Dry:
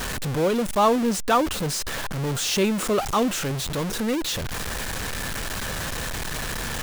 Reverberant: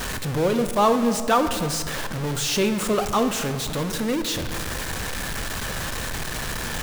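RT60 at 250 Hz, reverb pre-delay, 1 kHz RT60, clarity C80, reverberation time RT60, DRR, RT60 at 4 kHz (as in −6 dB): 2.6 s, 14 ms, 2.0 s, 10.5 dB, 2.1 s, 8.5 dB, 1.2 s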